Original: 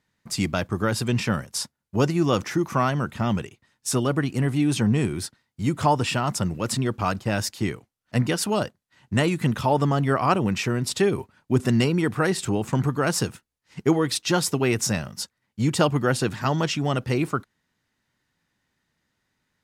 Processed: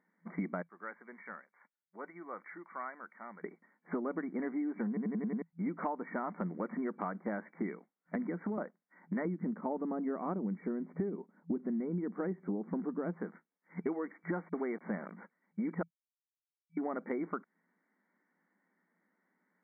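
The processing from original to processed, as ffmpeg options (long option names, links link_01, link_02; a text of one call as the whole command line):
ffmpeg -i in.wav -filter_complex "[0:a]asettb=1/sr,asplit=3[link_01][link_02][link_03];[link_01]atrim=end=0.624[link_04];[link_02]atrim=start=0.62:end=3.44,asetpts=PTS-STARTPTS,afade=type=in:duration=0.004:curve=qsin,afade=type=out:start_time=2.816:duration=0.004:curve=qsin,aderivative[link_05];[link_03]atrim=start=3.436[link_06];[link_04][link_05]acrossfade=duration=0.004:curve1=hsin:curve2=qsin[link_07];[link_07][link_06]acrossfade=duration=0.004:curve1=qsin:curve2=hsin,asettb=1/sr,asplit=3[link_08][link_09][link_10];[link_08]atrim=end=8.154[link_11];[link_09]atrim=start=8.15:end=8.58,asetpts=PTS-STARTPTS,afade=type=in:duration=0.004:curve=qsin,afade=type=out:start_time=0.426:duration=0.004:curve=qsin,acrossover=split=370|3000[link_12][link_13][link_14];[link_13]acompressor=threshold=-39dB:ratio=2.5:attack=3.2:release=140:knee=2.83:detection=peak[link_15];[link_12][link_15][link_14]amix=inputs=3:normalize=0[link_16];[link_10]atrim=start=8.576[link_17];[link_11][link_16]acrossfade=duration=0.004:curve1=hsin:curve2=qsin[link_18];[link_18][link_17]acrossfade=duration=0.004:curve1=qsin:curve2=hsin,asettb=1/sr,asplit=3[link_19][link_20][link_21];[link_19]atrim=end=9.254[link_22];[link_20]atrim=start=9.25:end=13.17,asetpts=PTS-STARTPTS,afade=type=in:duration=0.004:curve=qsin,afade=type=out:start_time=3.916:duration=0.004:curve=qsin,tiltshelf=frequency=670:gain=8.5[link_23];[link_21]atrim=start=13.166[link_24];[link_22][link_23]acrossfade=duration=0.004:curve1=hsin:curve2=qsin[link_25];[link_25][link_24]acrossfade=duration=0.004:curve1=qsin:curve2=hsin,asettb=1/sr,asplit=3[link_26][link_27][link_28];[link_26]atrim=end=14.334[link_29];[link_27]atrim=start=14.33:end=15.12,asetpts=PTS-STARTPTS,afade=type=in:duration=0.004:curve=qsin,afade=type=out:start_time=0.786:duration=0.004:curve=qsin,aeval=exprs='val(0)*gte(abs(val(0)),0.0224)':channel_layout=same[link_30];[link_28]atrim=start=15.116[link_31];[link_29][link_30]acrossfade=duration=0.004:curve1=hsin:curve2=qsin[link_32];[link_32][link_31]acrossfade=duration=0.004:curve1=qsin:curve2=hsin,asplit=9[link_33][link_34][link_35][link_36][link_37][link_38][link_39][link_40][link_41];[link_33]atrim=end=4.972[link_42];[link_34]atrim=start=4.878:end=4.972[link_43];[link_35]atrim=start=4.878:end=4.972[link_44];[link_36]atrim=start=4.878:end=4.972[link_45];[link_37]atrim=start=4.878:end=4.972[link_46];[link_38]atrim=start=4.878:end=4.972[link_47];[link_39]atrim=start=5.418:end=15.83,asetpts=PTS-STARTPTS,afade=type=out:start_time=10.408:duration=0.004:curve=hsin[link_48];[link_40]atrim=start=15.83:end=16.77,asetpts=PTS-STARTPTS,volume=0[link_49];[link_41]atrim=start=16.77,asetpts=PTS-STARTPTS,afade=type=in:duration=0.004:curve=hsin[link_50];[link_42][link_43]acrossfade=duration=0.004:curve1=hsin:curve2=hsin[link_51];[link_51][link_44]acrossfade=duration=0.004:curve1=hsin:curve2=hsin[link_52];[link_52][link_45]acrossfade=duration=0.004:curve1=hsin:curve2=hsin[link_53];[link_53][link_46]acrossfade=duration=0.004:curve1=hsin:curve2=hsin[link_54];[link_54][link_47]acrossfade=duration=0.004:curve1=hsin:curve2=hsin[link_55];[link_48][link_49][link_50]concat=n=3:v=0:a=1[link_56];[link_55][link_56]acrossfade=duration=0.004:curve1=hsin:curve2=hsin,aemphasis=mode=reproduction:type=75kf,afftfilt=real='re*between(b*sr/4096,170,2300)':imag='im*between(b*sr/4096,170,2300)':win_size=4096:overlap=0.75,acompressor=threshold=-33dB:ratio=10" out.wav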